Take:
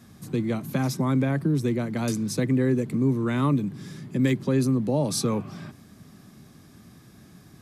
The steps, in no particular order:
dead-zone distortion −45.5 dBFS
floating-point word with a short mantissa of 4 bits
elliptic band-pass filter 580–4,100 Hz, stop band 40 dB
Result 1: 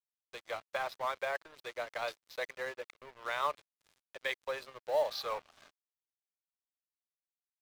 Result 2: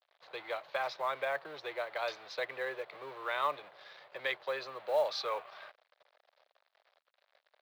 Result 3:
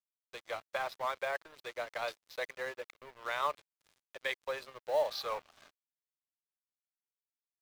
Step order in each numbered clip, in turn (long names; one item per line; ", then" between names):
elliptic band-pass filter, then dead-zone distortion, then floating-point word with a short mantissa
dead-zone distortion, then elliptic band-pass filter, then floating-point word with a short mantissa
elliptic band-pass filter, then floating-point word with a short mantissa, then dead-zone distortion